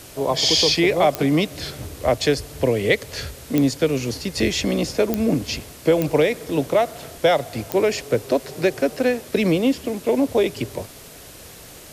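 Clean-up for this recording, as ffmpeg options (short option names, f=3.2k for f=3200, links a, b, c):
-af "adeclick=t=4,afwtdn=0.0079"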